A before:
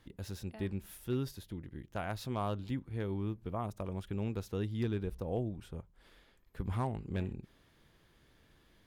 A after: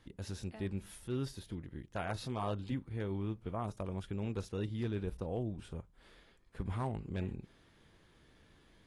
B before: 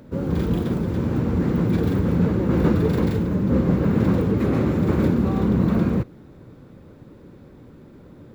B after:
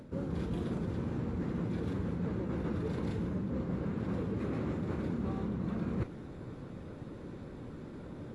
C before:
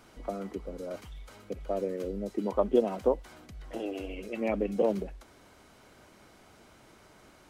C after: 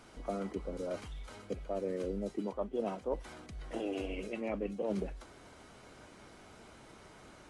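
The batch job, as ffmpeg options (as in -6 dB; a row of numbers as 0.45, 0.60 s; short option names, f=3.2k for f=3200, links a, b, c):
-af "areverse,acompressor=threshold=-31dB:ratio=20,areverse" -ar 24000 -c:a aac -b:a 32k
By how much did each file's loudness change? -1.5, -16.0, -6.5 LU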